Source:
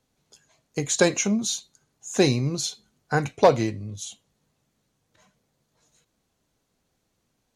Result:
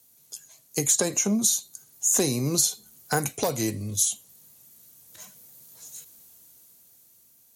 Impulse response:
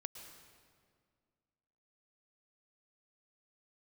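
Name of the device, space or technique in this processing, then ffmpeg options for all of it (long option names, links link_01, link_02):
FM broadcast chain: -filter_complex "[0:a]highpass=61,dynaudnorm=framelen=380:gausssize=9:maxgain=11dB,acrossover=split=190|1500|7800[link_01][link_02][link_03][link_04];[link_01]acompressor=threshold=-31dB:ratio=4[link_05];[link_02]acompressor=threshold=-19dB:ratio=4[link_06];[link_03]acompressor=threshold=-40dB:ratio=4[link_07];[link_04]acompressor=threshold=-45dB:ratio=4[link_08];[link_05][link_06][link_07][link_08]amix=inputs=4:normalize=0,aemphasis=mode=production:type=50fm,alimiter=limit=-12dB:level=0:latency=1:release=322,asoftclip=type=hard:threshold=-15.5dB,lowpass=frequency=15000:width=0.5412,lowpass=frequency=15000:width=1.3066,aemphasis=mode=production:type=50fm"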